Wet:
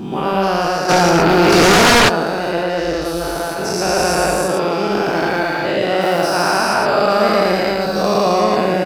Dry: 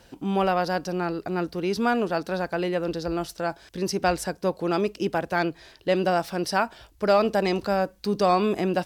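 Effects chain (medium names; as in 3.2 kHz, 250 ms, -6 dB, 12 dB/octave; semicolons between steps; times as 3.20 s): every event in the spectrogram widened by 480 ms; delay 113 ms -3 dB; 0.88–2.08 s: sine folder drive 7 dB -> 12 dB, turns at -5.5 dBFS; trim -1 dB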